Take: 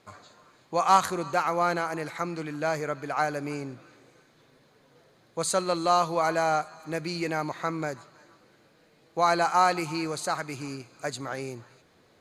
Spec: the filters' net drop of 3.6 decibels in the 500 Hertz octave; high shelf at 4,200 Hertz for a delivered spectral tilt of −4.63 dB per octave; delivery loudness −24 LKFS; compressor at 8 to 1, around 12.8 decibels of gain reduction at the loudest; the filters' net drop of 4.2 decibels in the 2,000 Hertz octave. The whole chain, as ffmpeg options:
ffmpeg -i in.wav -af "equalizer=frequency=500:width_type=o:gain=-4.5,equalizer=frequency=2000:width_type=o:gain=-5,highshelf=frequency=4200:gain=-3.5,acompressor=threshold=-30dB:ratio=8,volume=12.5dB" out.wav

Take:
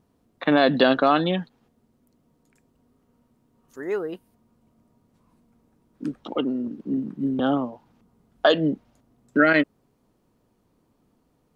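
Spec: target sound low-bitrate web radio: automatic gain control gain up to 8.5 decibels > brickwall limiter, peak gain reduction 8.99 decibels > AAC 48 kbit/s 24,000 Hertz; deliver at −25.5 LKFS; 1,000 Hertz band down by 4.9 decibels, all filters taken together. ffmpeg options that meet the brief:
ffmpeg -i in.wav -af "equalizer=frequency=1000:width_type=o:gain=-8,dynaudnorm=maxgain=8.5dB,alimiter=limit=-16.5dB:level=0:latency=1,volume=3dB" -ar 24000 -c:a aac -b:a 48k out.aac

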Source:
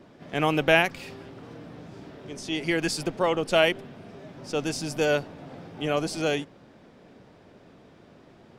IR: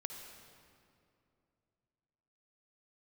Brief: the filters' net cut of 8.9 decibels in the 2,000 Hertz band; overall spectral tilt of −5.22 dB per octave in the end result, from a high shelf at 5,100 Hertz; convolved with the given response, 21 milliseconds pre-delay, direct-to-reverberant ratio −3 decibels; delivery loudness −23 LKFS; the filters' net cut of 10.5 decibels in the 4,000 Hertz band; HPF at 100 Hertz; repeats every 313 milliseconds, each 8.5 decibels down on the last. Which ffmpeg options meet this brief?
-filter_complex "[0:a]highpass=100,equalizer=frequency=2000:width_type=o:gain=-9,equalizer=frequency=4000:width_type=o:gain=-8.5,highshelf=frequency=5100:gain=-6,aecho=1:1:313|626|939|1252:0.376|0.143|0.0543|0.0206,asplit=2[link_01][link_02];[1:a]atrim=start_sample=2205,adelay=21[link_03];[link_02][link_03]afir=irnorm=-1:irlink=0,volume=4.5dB[link_04];[link_01][link_04]amix=inputs=2:normalize=0,volume=1.5dB"

